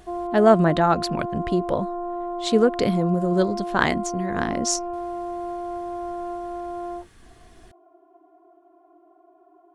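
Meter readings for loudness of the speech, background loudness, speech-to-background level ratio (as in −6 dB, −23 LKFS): −22.5 LKFS, −30.5 LKFS, 8.0 dB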